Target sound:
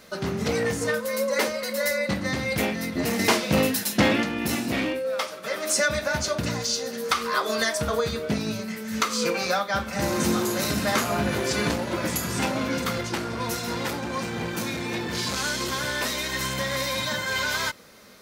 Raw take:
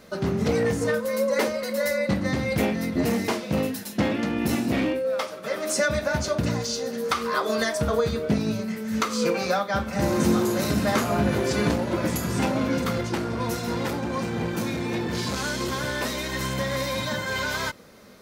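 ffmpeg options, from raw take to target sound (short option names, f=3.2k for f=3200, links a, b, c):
-filter_complex "[0:a]tiltshelf=f=970:g=-4,asettb=1/sr,asplit=3[a][b][c];[a]atrim=end=3.194[d];[b]atrim=start=3.19:end=4.23,asetpts=PTS-STARTPTS,afade=t=in:d=0.004:c=qsin,afade=t=out:st=1.036:d=0.004:c=qsin,acontrast=57[e];[c]atrim=start=4.226[f];[d][e]acrossfade=d=0.004:c1=hsin:c2=qsin[g];[g][f]acrossfade=d=0.004:c1=qsin:c2=hsin"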